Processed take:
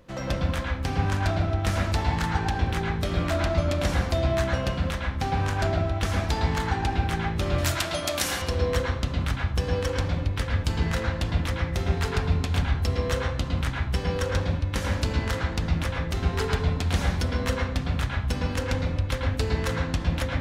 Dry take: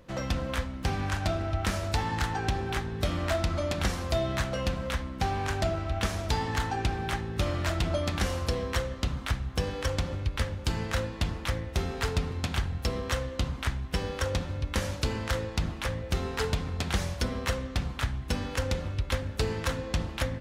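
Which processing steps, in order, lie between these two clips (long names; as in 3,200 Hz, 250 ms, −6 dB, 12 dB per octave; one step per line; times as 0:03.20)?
0:07.58–0:08.42: RIAA equalisation recording
convolution reverb RT60 0.40 s, pre-delay 105 ms, DRR −1 dB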